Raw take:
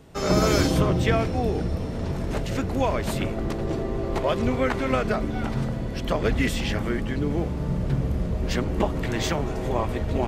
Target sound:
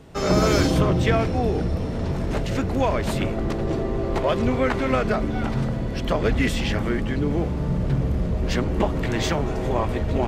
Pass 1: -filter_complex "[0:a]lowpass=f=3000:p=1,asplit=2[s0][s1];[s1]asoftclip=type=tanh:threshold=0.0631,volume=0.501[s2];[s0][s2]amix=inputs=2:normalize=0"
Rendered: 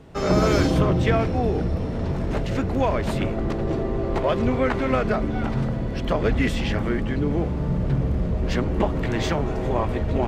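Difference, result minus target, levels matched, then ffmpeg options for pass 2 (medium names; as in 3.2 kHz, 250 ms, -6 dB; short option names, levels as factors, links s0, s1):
8 kHz band -5.0 dB
-filter_complex "[0:a]lowpass=f=7300:p=1,asplit=2[s0][s1];[s1]asoftclip=type=tanh:threshold=0.0631,volume=0.501[s2];[s0][s2]amix=inputs=2:normalize=0"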